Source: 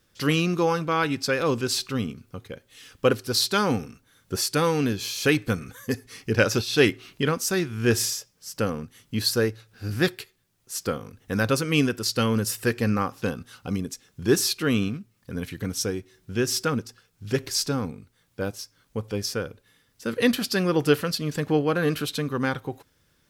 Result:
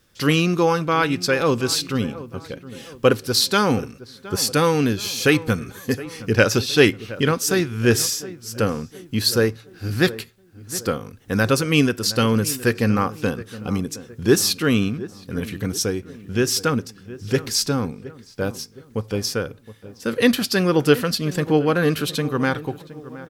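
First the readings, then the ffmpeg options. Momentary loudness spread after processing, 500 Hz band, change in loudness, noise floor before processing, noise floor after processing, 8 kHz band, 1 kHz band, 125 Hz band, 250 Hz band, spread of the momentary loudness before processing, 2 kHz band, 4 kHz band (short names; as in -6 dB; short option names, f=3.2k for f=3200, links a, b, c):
13 LU, +4.5 dB, +4.5 dB, -67 dBFS, -49 dBFS, +4.5 dB, +4.5 dB, +4.5 dB, +4.5 dB, 13 LU, +4.5 dB, +4.5 dB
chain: -filter_complex "[0:a]asplit=2[a][b];[b]adelay=717,lowpass=f=1.5k:p=1,volume=-16dB,asplit=2[c][d];[d]adelay=717,lowpass=f=1.5k:p=1,volume=0.48,asplit=2[e][f];[f]adelay=717,lowpass=f=1.5k:p=1,volume=0.48,asplit=2[g][h];[h]adelay=717,lowpass=f=1.5k:p=1,volume=0.48[i];[a][c][e][g][i]amix=inputs=5:normalize=0,volume=4.5dB"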